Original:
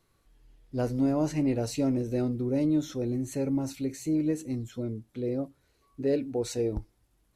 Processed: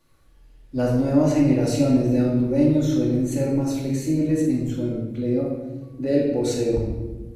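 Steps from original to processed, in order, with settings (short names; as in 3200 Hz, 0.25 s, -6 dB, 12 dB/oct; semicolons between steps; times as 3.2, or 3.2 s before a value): shoebox room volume 760 m³, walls mixed, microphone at 2.4 m; gain +2 dB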